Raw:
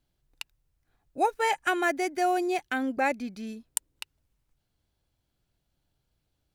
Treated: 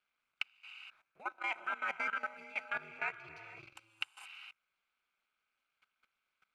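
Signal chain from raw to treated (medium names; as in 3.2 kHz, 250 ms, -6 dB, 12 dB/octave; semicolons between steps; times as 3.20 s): companding laws mixed up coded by mu; reverse; compression 5:1, threshold -36 dBFS, peak gain reduction 15.5 dB; reverse; two resonant band-passes 1.8 kHz, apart 0.7 oct; gated-style reverb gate 490 ms rising, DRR 4 dB; ring modulator 110 Hz; level held to a coarse grid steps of 17 dB; trim +16 dB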